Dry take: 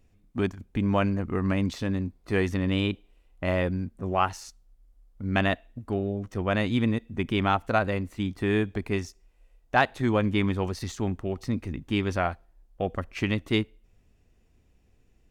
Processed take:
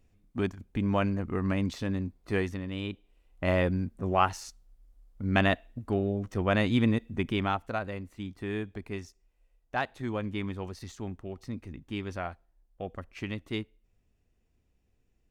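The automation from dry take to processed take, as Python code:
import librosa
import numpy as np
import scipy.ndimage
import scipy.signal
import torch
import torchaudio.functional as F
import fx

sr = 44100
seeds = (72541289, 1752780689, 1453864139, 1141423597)

y = fx.gain(x, sr, db=fx.line((2.35, -3.0), (2.68, -11.0), (3.49, 0.0), (7.1, 0.0), (7.79, -9.0)))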